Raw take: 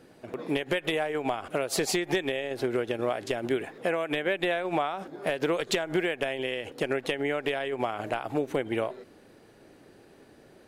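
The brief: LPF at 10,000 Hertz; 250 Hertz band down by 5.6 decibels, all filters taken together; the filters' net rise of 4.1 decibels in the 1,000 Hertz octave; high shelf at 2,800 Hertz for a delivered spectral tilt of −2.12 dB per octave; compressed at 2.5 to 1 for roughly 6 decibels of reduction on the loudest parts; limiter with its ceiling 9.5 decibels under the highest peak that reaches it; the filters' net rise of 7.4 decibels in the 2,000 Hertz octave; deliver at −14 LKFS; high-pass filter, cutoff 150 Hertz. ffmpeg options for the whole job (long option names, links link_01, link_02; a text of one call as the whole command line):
ffmpeg -i in.wav -af "highpass=150,lowpass=10000,equalizer=frequency=250:width_type=o:gain=-9,equalizer=frequency=1000:width_type=o:gain=4.5,equalizer=frequency=2000:width_type=o:gain=5,highshelf=frequency=2800:gain=7,acompressor=threshold=-29dB:ratio=2.5,volume=20.5dB,alimiter=limit=-2.5dB:level=0:latency=1" out.wav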